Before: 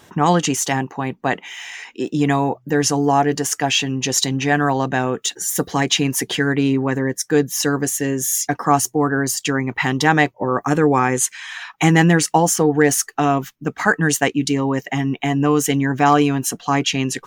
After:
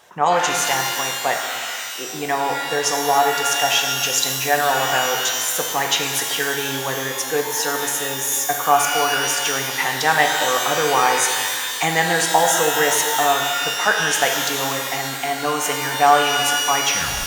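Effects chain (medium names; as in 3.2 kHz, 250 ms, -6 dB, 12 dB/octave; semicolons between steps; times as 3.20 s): tape stop on the ending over 0.39 s; resonant low shelf 400 Hz -11.5 dB, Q 1.5; pitch-shifted reverb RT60 1.9 s, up +12 st, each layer -2 dB, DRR 2.5 dB; trim -2.5 dB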